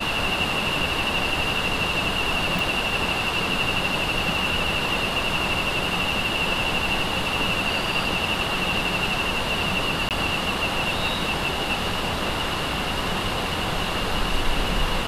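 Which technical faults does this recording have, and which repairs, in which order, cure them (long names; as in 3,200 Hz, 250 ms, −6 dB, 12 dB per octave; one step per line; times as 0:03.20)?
0:02.59: click
0:10.09–0:10.11: drop-out 18 ms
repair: click removal
repair the gap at 0:10.09, 18 ms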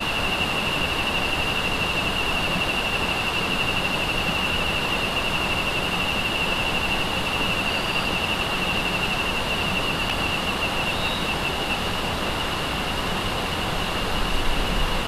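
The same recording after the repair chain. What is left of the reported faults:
none of them is left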